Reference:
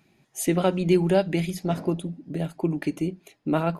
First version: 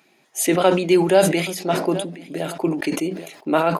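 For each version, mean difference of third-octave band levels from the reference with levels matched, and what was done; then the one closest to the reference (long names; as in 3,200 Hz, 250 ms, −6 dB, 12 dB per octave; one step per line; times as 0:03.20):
6.5 dB: high-pass filter 370 Hz 12 dB per octave
on a send: single-tap delay 827 ms −22.5 dB
on the sum: level that may fall only so fast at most 73 dB per second
level +7.5 dB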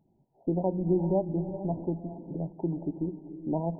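10.0 dB: linear-phase brick-wall low-pass 1,000 Hz
low-shelf EQ 79 Hz +8.5 dB
reverb whose tail is shaped and stops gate 480 ms rising, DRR 10 dB
level −6.5 dB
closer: first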